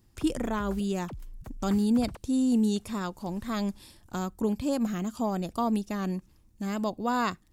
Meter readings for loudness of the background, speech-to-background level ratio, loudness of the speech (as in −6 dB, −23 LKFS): −46.5 LKFS, 17.0 dB, −29.5 LKFS